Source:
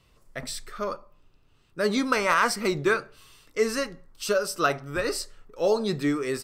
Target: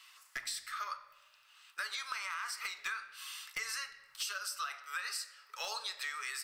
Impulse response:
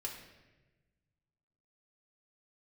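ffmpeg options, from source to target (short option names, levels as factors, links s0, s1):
-filter_complex "[0:a]highpass=f=1200:w=0.5412,highpass=f=1200:w=1.3066,alimiter=limit=0.0794:level=0:latency=1:release=88,acompressor=threshold=0.00447:ratio=8,aeval=exprs='0.0141*(abs(mod(val(0)/0.0141+3,4)-2)-1)':c=same,asplit=2[s0][s1];[1:a]atrim=start_sample=2205,lowshelf=f=110:g=9[s2];[s1][s2]afir=irnorm=-1:irlink=0,volume=0.75[s3];[s0][s3]amix=inputs=2:normalize=0,volume=2.11"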